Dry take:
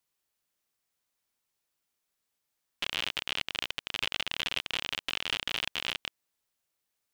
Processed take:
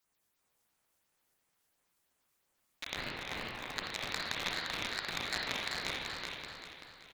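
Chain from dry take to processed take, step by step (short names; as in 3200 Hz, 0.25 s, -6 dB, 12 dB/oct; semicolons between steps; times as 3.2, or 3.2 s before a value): 2.96–3.74 band shelf 3100 Hz -10.5 dB 1.3 oct; in parallel at 0 dB: limiter -19.5 dBFS, peak gain reduction 7.5 dB; on the sum: phaser stages 4, 2.9 Hz, lowest notch 320–4900 Hz; one-sided clip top -33.5 dBFS; on a send: feedback echo 0.386 s, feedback 43%, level -5 dB; on the sum: spring tank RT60 1.7 s, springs 38/55 ms, chirp 65 ms, DRR -2.5 dB; ring modulator with a swept carrier 920 Hz, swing 30%, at 2.6 Hz; gain +1 dB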